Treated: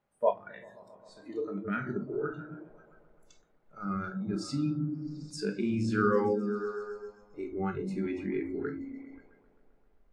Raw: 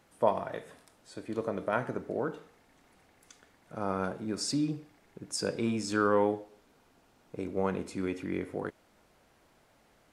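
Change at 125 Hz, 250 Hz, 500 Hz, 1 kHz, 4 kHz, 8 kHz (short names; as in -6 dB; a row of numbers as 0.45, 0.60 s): +3.5, +1.5, -0.5, -2.5, -7.0, -10.5 dB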